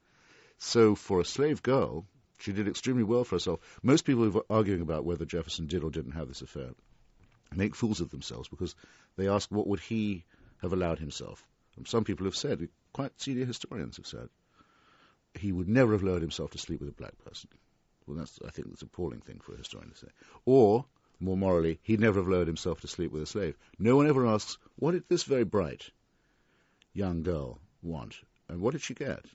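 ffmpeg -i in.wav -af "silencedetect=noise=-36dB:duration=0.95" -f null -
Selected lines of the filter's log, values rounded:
silence_start: 14.25
silence_end: 15.35 | silence_duration: 1.10
silence_start: 25.81
silence_end: 26.96 | silence_duration: 1.15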